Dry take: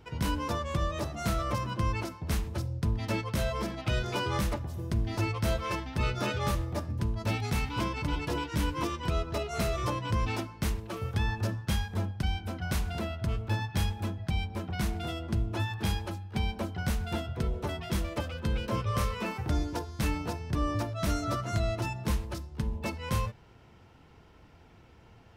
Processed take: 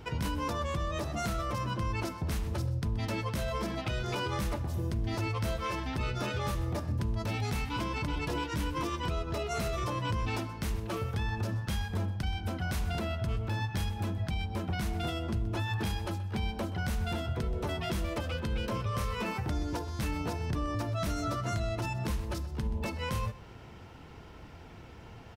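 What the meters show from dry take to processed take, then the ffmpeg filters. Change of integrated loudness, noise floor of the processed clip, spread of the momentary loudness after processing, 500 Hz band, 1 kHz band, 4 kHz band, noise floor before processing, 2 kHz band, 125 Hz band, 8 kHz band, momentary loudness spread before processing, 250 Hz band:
-1.5 dB, -49 dBFS, 3 LU, -1.0 dB, -1.0 dB, -1.5 dB, -56 dBFS, -1.0 dB, -1.5 dB, -2.5 dB, 4 LU, -1.5 dB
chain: -af "alimiter=level_in=7.5dB:limit=-24dB:level=0:latency=1:release=196,volume=-7.5dB,aecho=1:1:127:0.133,volume=7dB"

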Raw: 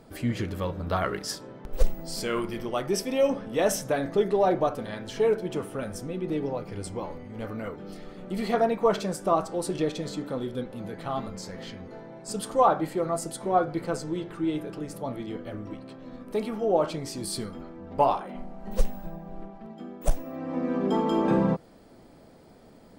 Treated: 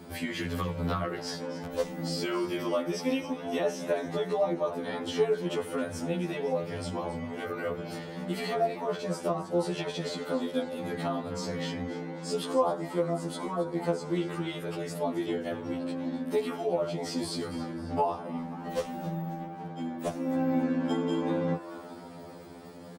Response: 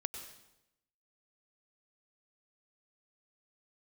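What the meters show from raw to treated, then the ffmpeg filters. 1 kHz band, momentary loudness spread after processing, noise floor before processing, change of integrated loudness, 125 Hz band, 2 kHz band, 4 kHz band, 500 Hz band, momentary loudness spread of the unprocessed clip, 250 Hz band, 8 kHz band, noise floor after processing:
-5.5 dB, 8 LU, -52 dBFS, -3.0 dB, -1.5 dB, -0.5 dB, 0.0 dB, -3.0 dB, 17 LU, -1.0 dB, -6.0 dB, -44 dBFS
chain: -filter_complex "[0:a]acrossover=split=4900[a][b];[b]acompressor=threshold=-49dB:ratio=4:attack=1:release=60[c];[a][c]amix=inputs=2:normalize=0,highpass=100,acrossover=split=140|610[d][e][f];[d]acompressor=threshold=-51dB:ratio=4[g];[e]acompressor=threshold=-39dB:ratio=4[h];[f]acompressor=threshold=-42dB:ratio=4[i];[g][h][i]amix=inputs=3:normalize=0,asplit=2[j][k];[k]asplit=4[l][m][n][o];[l]adelay=269,afreqshift=140,volume=-15dB[p];[m]adelay=538,afreqshift=280,volume=-21.4dB[q];[n]adelay=807,afreqshift=420,volume=-27.8dB[r];[o]adelay=1076,afreqshift=560,volume=-34.1dB[s];[p][q][r][s]amix=inputs=4:normalize=0[t];[j][t]amix=inputs=2:normalize=0,afftfilt=real='re*2*eq(mod(b,4),0)':imag='im*2*eq(mod(b,4),0)':win_size=2048:overlap=0.75,volume=9dB"

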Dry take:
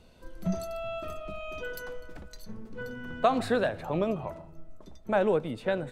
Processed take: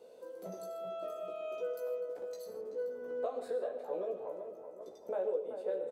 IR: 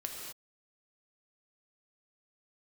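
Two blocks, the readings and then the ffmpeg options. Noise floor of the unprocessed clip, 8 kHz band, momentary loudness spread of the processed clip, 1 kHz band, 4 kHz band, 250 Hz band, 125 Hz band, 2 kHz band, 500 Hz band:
-52 dBFS, n/a, 10 LU, -13.5 dB, under -15 dB, -19.0 dB, under -20 dB, -19.0 dB, -5.0 dB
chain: -filter_complex "[0:a]highpass=f=480:t=q:w=6,equalizer=f=2.3k:t=o:w=2.6:g=-9.5,acompressor=threshold=-42dB:ratio=2.5,asplit=2[a][b];[b]adelay=381,lowpass=f=1.9k:p=1,volume=-8.5dB,asplit=2[c][d];[d]adelay=381,lowpass=f=1.9k:p=1,volume=0.48,asplit=2[e][f];[f]adelay=381,lowpass=f=1.9k:p=1,volume=0.48,asplit=2[g][h];[h]adelay=381,lowpass=f=1.9k:p=1,volume=0.48,asplit=2[i][j];[j]adelay=381,lowpass=f=1.9k:p=1,volume=0.48[k];[a][c][e][g][i][k]amix=inputs=6:normalize=0,asplit=2[l][m];[1:a]atrim=start_sample=2205,afade=t=out:st=0.2:d=0.01,atrim=end_sample=9261,adelay=16[n];[m][n]afir=irnorm=-1:irlink=0,volume=-1.5dB[o];[l][o]amix=inputs=2:normalize=0,volume=-2dB"

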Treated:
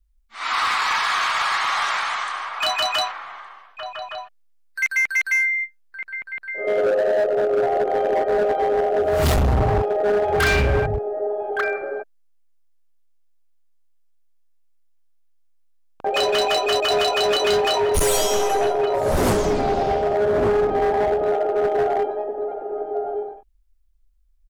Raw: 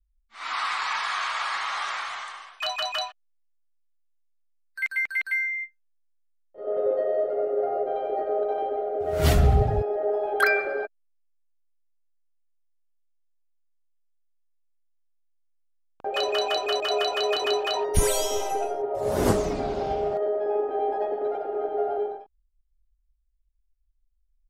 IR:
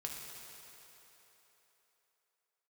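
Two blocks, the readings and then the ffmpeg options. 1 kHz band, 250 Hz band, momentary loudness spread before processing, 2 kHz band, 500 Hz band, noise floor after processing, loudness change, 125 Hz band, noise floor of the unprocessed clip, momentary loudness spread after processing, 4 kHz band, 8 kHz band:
+7.0 dB, +5.5 dB, 9 LU, +6.5 dB, +6.5 dB, -57 dBFS, +5.5 dB, +3.0 dB, -69 dBFS, 12 LU, +6.0 dB, +5.5 dB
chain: -filter_complex "[0:a]asplit=2[a][b];[b]adelay=1166,volume=-6dB,highshelf=f=4k:g=-26.2[c];[a][c]amix=inputs=2:normalize=0,volume=23dB,asoftclip=hard,volume=-23dB,volume=7.5dB"

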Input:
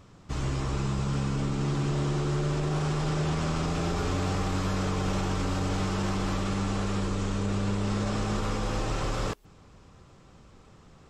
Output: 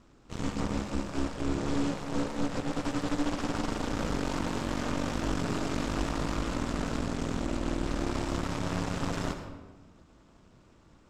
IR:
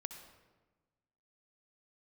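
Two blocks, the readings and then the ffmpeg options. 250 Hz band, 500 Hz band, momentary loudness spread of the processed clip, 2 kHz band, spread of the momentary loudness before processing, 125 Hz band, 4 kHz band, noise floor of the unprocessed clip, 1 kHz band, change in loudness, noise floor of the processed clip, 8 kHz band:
-1.0 dB, -2.0 dB, 3 LU, -1.0 dB, 2 LU, -8.0 dB, -2.5 dB, -54 dBFS, -2.5 dB, -3.0 dB, -59 dBFS, -2.5 dB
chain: -filter_complex "[0:a]aeval=exprs='val(0)*sin(2*PI*140*n/s)':c=same,aeval=exprs='0.141*(cos(1*acos(clip(val(0)/0.141,-1,1)))-cos(1*PI/2))+0.0355*(cos(6*acos(clip(val(0)/0.141,-1,1)))-cos(6*PI/2))':c=same[a];[1:a]atrim=start_sample=2205[b];[a][b]afir=irnorm=-1:irlink=0"

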